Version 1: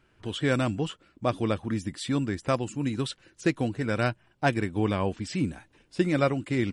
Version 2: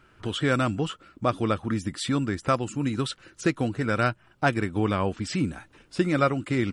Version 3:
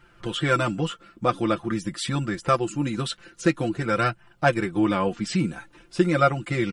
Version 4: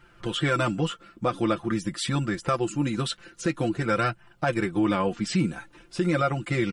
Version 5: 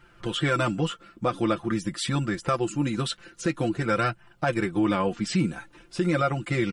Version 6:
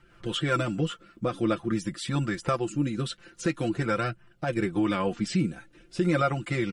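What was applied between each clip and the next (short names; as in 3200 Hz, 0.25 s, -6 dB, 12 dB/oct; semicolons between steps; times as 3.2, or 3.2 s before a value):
bell 1300 Hz +8 dB 0.34 oct; in parallel at +2 dB: compressor, threshold -34 dBFS, peak gain reduction 15.5 dB; on the sum: gain -1.5 dB
flange 0.47 Hz, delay 1 ms, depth 3.8 ms, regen +62%; comb 5.8 ms, depth 73%; gain +4.5 dB
limiter -14.5 dBFS, peak gain reduction 8 dB
nothing audible
rotary speaker horn 5 Hz, later 0.75 Hz, at 1.39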